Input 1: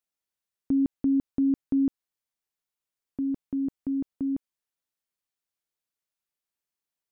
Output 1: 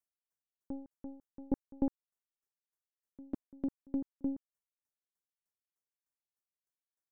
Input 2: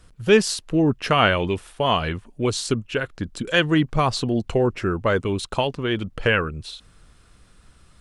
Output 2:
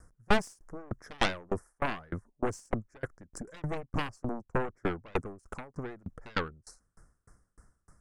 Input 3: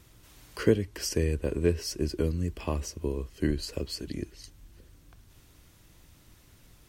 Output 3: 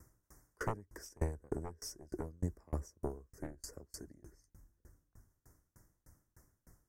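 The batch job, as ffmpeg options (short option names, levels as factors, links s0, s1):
-af "asuperstop=centerf=3200:order=8:qfactor=0.89,aeval=exprs='0.531*(cos(1*acos(clip(val(0)/0.531,-1,1)))-cos(1*PI/2))+0.211*(cos(3*acos(clip(val(0)/0.531,-1,1)))-cos(3*PI/2))+0.211*(cos(4*acos(clip(val(0)/0.531,-1,1)))-cos(4*PI/2))+0.133*(cos(7*acos(clip(val(0)/0.531,-1,1)))-cos(7*PI/2))+0.0075*(cos(8*acos(clip(val(0)/0.531,-1,1)))-cos(8*PI/2))':c=same,aeval=exprs='val(0)*pow(10,-33*if(lt(mod(3.3*n/s,1),2*abs(3.3)/1000),1-mod(3.3*n/s,1)/(2*abs(3.3)/1000),(mod(3.3*n/s,1)-2*abs(3.3)/1000)/(1-2*abs(3.3)/1000))/20)':c=same,volume=0.447"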